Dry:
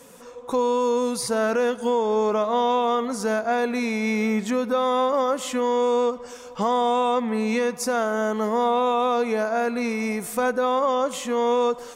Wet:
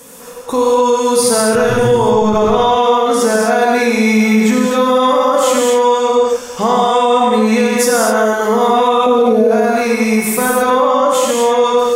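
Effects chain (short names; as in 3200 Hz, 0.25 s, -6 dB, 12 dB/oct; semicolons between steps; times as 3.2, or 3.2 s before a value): 1.54–2.51 octaver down 1 oct, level +2 dB; 9.06–9.51 ten-band EQ 250 Hz +10 dB, 500 Hz +8 dB, 1000 Hz -9 dB, 2000 Hz -9 dB, 4000 Hz -5 dB, 8000 Hz -7 dB; non-linear reverb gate 0.29 s flat, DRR -3.5 dB; limiter -10.5 dBFS, peak gain reduction 8.5 dB; high shelf 8400 Hz +8.5 dB; 10.7–11.64 three-band expander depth 40%; gain +7 dB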